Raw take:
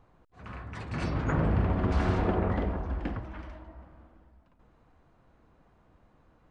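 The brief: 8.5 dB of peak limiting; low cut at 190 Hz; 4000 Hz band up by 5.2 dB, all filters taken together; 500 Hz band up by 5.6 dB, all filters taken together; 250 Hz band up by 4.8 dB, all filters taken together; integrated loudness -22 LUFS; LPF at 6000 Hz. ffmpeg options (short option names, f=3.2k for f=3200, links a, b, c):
-af "highpass=190,lowpass=6k,equalizer=f=250:t=o:g=7,equalizer=f=500:t=o:g=5,equalizer=f=4k:t=o:g=7.5,volume=8dB,alimiter=limit=-11dB:level=0:latency=1"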